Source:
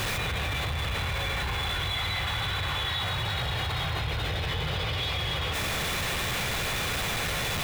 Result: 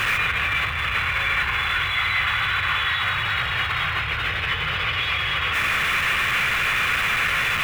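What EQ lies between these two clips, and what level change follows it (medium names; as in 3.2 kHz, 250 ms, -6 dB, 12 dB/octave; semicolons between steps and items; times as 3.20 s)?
high-order bell 1.8 kHz +14 dB; -2.0 dB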